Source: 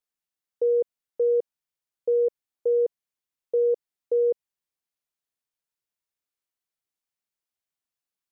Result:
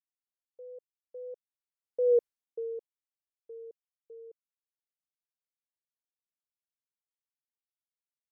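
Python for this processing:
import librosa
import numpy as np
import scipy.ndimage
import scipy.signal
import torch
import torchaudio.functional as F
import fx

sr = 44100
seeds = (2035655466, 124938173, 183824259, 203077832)

y = fx.doppler_pass(x, sr, speed_mps=15, closest_m=1.4, pass_at_s=2.16)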